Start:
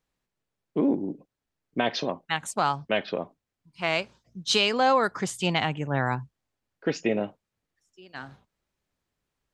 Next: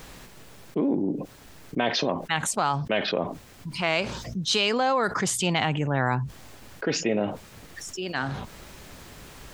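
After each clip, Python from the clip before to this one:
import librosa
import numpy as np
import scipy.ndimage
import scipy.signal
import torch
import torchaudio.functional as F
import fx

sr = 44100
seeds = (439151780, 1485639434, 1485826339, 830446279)

y = fx.env_flatten(x, sr, amount_pct=70)
y = F.gain(torch.from_numpy(y), -3.0).numpy()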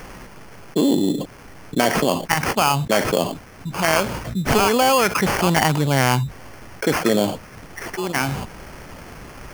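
y = fx.sample_hold(x, sr, seeds[0], rate_hz=3800.0, jitter_pct=0)
y = F.gain(torch.from_numpy(y), 7.0).numpy()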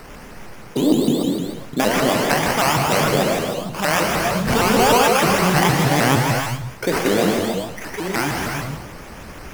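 y = fx.reverse_delay(x, sr, ms=113, wet_db=-14)
y = fx.rev_gated(y, sr, seeds[1], gate_ms=440, shape='flat', drr_db=-1.5)
y = fx.vibrato_shape(y, sr, shape='saw_up', rate_hz=6.5, depth_cents=250.0)
y = F.gain(torch.from_numpy(y), -2.0).numpy()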